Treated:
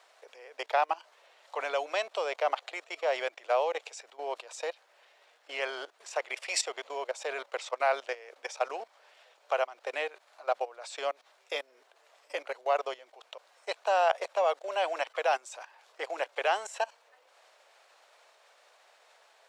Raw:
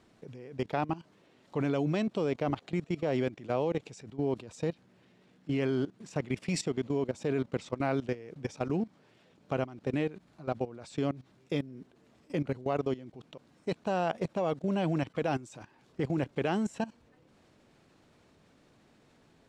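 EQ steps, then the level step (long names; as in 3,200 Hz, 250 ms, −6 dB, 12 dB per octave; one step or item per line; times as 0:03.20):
Butterworth high-pass 560 Hz 36 dB per octave
+7.0 dB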